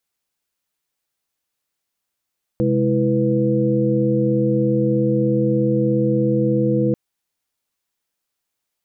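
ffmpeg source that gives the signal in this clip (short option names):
-f lavfi -i "aevalsrc='0.0944*(sin(2*PI*130.81*t)+sin(2*PI*207.65*t)+sin(2*PI*329.63*t)+sin(2*PI*493.88*t))':d=4.34:s=44100"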